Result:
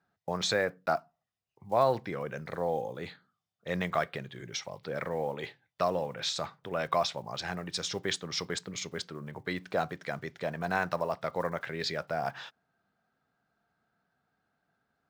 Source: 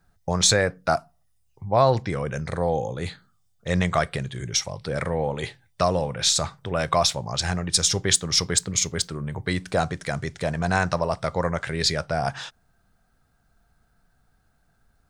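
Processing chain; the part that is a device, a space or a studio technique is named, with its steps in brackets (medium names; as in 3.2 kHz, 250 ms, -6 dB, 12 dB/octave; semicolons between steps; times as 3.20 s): early digital voice recorder (band-pass 200–3700 Hz; block-companded coder 7-bit); trim -6.5 dB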